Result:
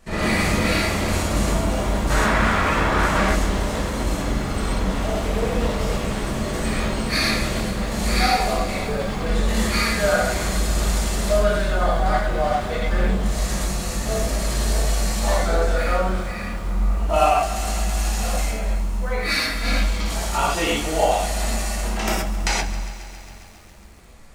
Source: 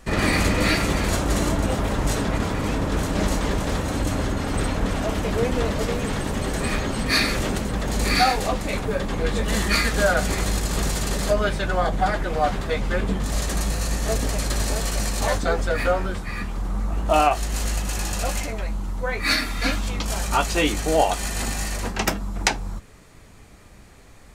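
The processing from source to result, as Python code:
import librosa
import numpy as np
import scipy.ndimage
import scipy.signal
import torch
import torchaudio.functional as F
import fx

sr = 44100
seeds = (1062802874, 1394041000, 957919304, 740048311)

y = fx.peak_eq(x, sr, hz=1500.0, db=13.5, octaves=1.9, at=(2.1, 3.23))
y = fx.rev_gated(y, sr, seeds[0], gate_ms=150, shape='flat', drr_db=-6.5)
y = fx.echo_crushed(y, sr, ms=136, feedback_pct=80, bits=6, wet_db=-14.5)
y = F.gain(torch.from_numpy(y), -7.0).numpy()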